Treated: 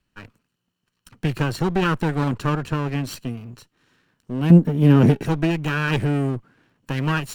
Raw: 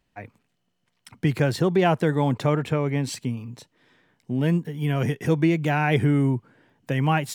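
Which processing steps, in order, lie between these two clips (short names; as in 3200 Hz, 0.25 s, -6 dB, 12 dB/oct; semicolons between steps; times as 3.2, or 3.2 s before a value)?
minimum comb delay 0.7 ms; 4.5–5.23 bell 270 Hz +15 dB 2.7 oct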